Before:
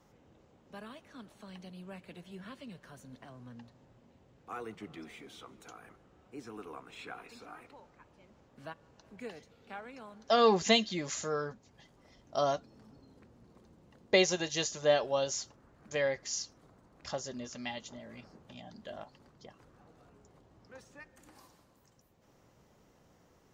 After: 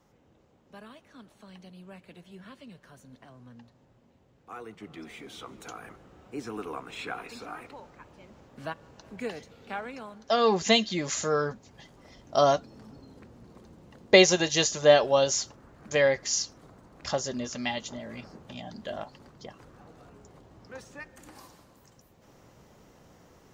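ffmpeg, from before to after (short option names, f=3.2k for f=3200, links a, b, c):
-af "volume=17dB,afade=t=in:st=4.73:d=0.92:silence=0.334965,afade=t=out:st=9.84:d=0.55:silence=0.375837,afade=t=in:st=10.39:d=1.1:silence=0.398107"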